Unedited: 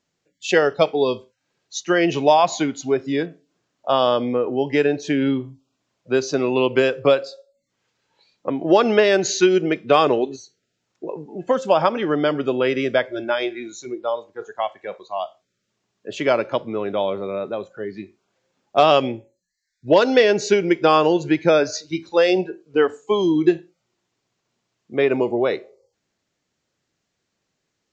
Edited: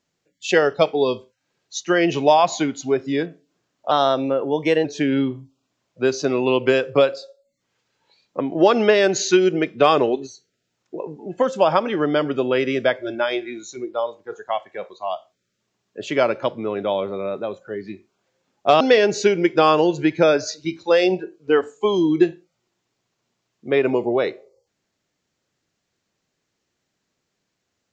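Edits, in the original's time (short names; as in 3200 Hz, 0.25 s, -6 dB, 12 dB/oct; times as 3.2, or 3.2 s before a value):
3.91–4.94 speed 110%
18.9–20.07 cut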